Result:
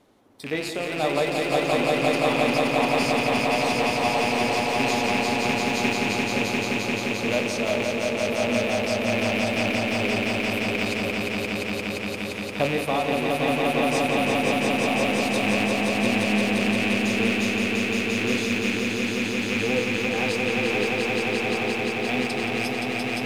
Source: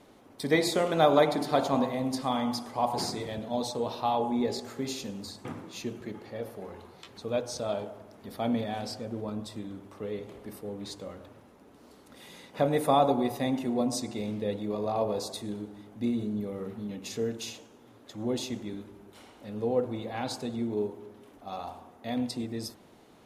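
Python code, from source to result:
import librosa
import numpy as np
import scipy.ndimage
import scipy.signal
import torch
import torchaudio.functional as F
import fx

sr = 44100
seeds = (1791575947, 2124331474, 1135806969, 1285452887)

y = fx.rattle_buzz(x, sr, strikes_db=-39.0, level_db=-19.0)
y = fx.rider(y, sr, range_db=4, speed_s=0.5)
y = fx.echo_swell(y, sr, ms=174, loudest=5, wet_db=-3.5)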